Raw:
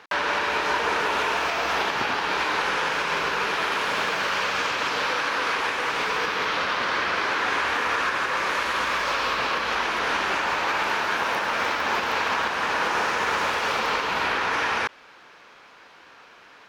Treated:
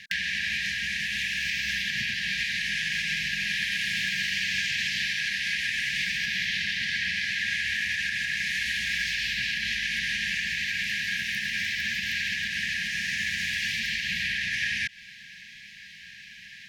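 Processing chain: compressor, threshold -29 dBFS, peak gain reduction 9 dB; brick-wall FIR band-stop 230–1600 Hz; gain +7.5 dB

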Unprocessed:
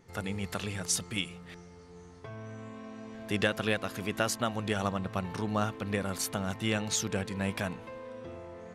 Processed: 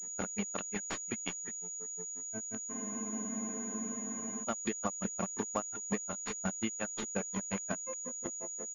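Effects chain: tracing distortion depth 0.048 ms; reverb removal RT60 0.9 s; on a send: tapped delay 64/368 ms -5.5/-12.5 dB; on the sum: grains 94 ms, grains 5.6/s, spray 11 ms, pitch spread up and down by 0 st; resonant low shelf 140 Hz -13 dB, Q 1.5; in parallel at -5.5 dB: bit-crush 6-bit; on the sum: compressor 6:1, threshold -36 dBFS, peak gain reduction 16 dB; spectral freeze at 2.74, 1.69 s; pulse-width modulation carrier 6800 Hz; gain +4.5 dB

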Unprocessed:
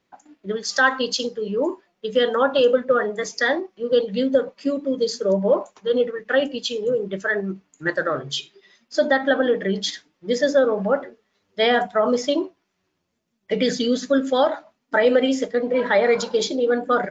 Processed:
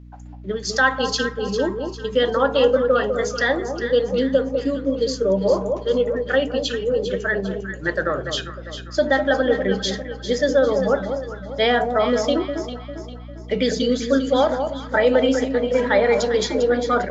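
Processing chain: hum 60 Hz, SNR 20 dB; echo with dull and thin repeats by turns 0.2 s, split 1100 Hz, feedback 64%, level -6 dB

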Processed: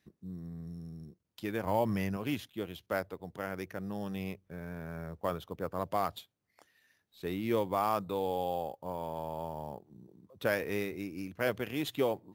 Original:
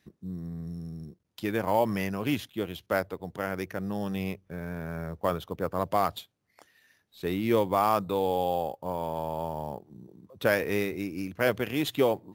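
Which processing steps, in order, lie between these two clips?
1.65–2.17 low shelf 180 Hz +9 dB; gain -6 dB

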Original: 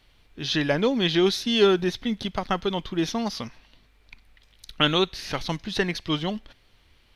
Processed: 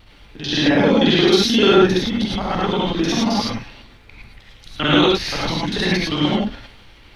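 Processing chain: local time reversal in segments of 44 ms; high shelf 7000 Hz -10.5 dB; in parallel at +0.5 dB: compressor, threshold -36 dBFS, peak gain reduction 20.5 dB; on the sum: transient shaper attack -8 dB, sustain +4 dB; non-linear reverb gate 0.13 s rising, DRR -4.5 dB; added noise brown -54 dBFS; gain +3 dB

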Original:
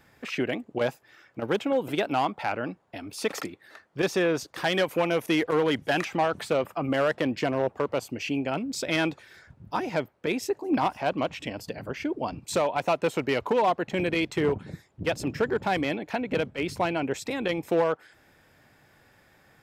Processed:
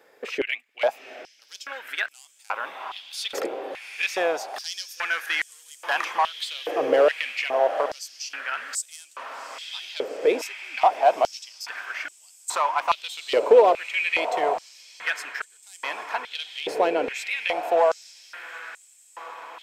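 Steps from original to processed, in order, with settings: diffused feedback echo 0.783 s, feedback 68%, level -10.5 dB; stepped high-pass 2.4 Hz 460–7900 Hz

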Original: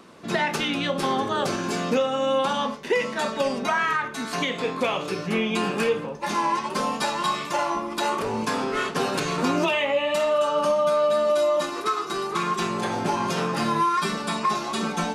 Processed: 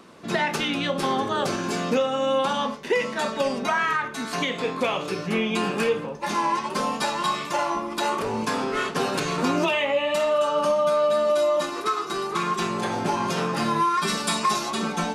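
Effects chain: 14.07–14.69 high shelf 3100 Hz -> 5100 Hz +11.5 dB

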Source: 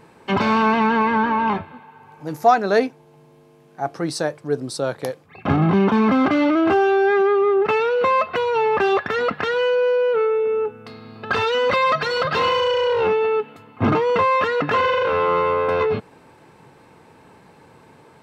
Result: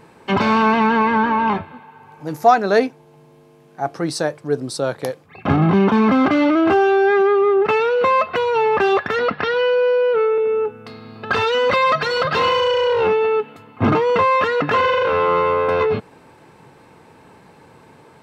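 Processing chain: 9.19–10.38 steep low-pass 5800 Hz 96 dB/oct; gain +2 dB

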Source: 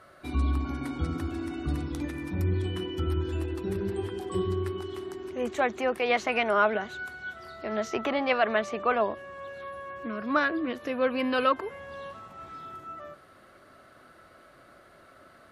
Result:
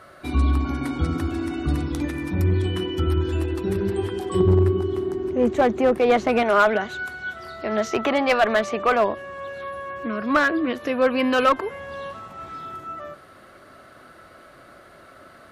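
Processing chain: 4.4–6.43 tilt shelf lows +8 dB, about 780 Hz; one-sided clip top -19 dBFS; gain +7 dB

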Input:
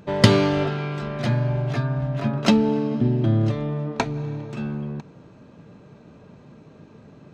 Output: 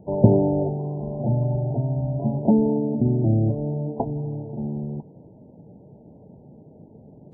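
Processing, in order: steep low-pass 860 Hz 72 dB/oct; Vorbis 16 kbps 22050 Hz

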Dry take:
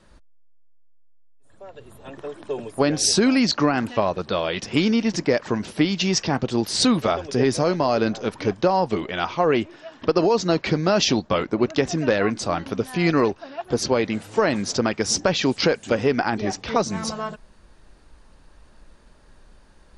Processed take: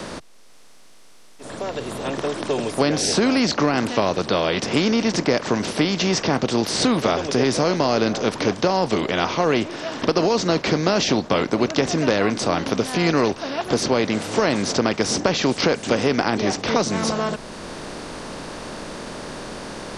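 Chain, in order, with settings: per-bin compression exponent 0.6; three-band squash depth 40%; gain -3 dB

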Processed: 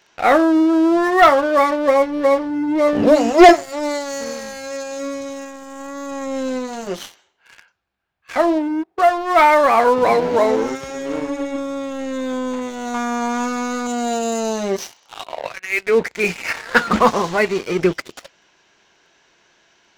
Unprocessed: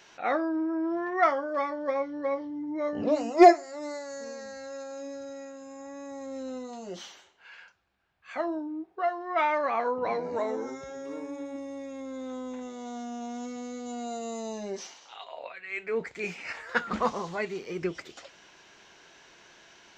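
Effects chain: 12.94–13.87 band shelf 1300 Hz +12 dB 1.2 oct; sample leveller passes 3; gain +3.5 dB

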